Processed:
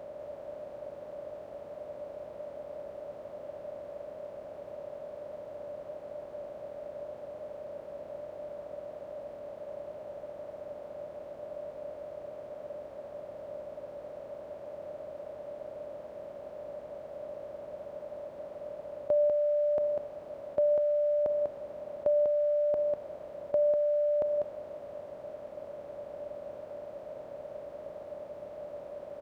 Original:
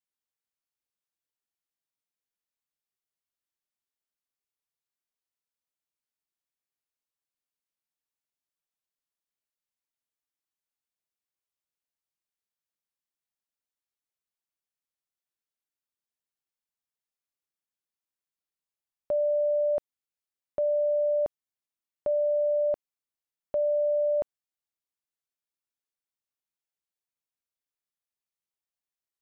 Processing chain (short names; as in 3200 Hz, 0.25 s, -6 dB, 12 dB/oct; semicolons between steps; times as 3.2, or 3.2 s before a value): per-bin compression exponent 0.2; HPF 49 Hz; on a send: echo 0.196 s -4.5 dB